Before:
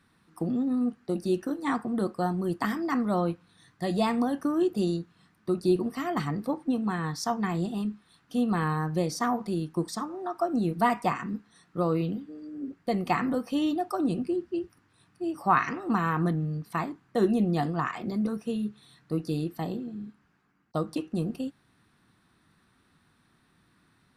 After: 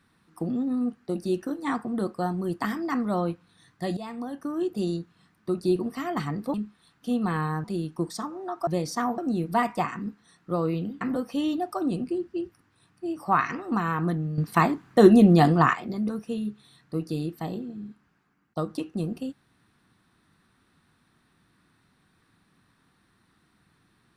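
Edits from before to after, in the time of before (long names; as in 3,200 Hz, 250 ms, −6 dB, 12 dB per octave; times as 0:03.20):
0:03.97–0:04.97: fade in, from −14.5 dB
0:06.54–0:07.81: remove
0:08.91–0:09.42: move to 0:10.45
0:12.28–0:13.19: remove
0:16.56–0:17.93: clip gain +9.5 dB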